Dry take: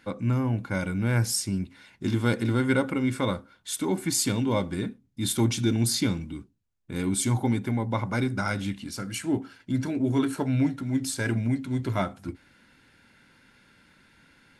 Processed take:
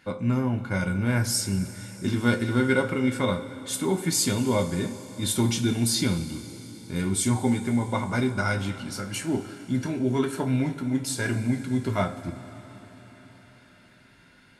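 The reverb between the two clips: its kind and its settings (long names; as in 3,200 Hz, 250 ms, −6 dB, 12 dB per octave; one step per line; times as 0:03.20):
coupled-rooms reverb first 0.23 s, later 4.8 s, from −20 dB, DRR 3.5 dB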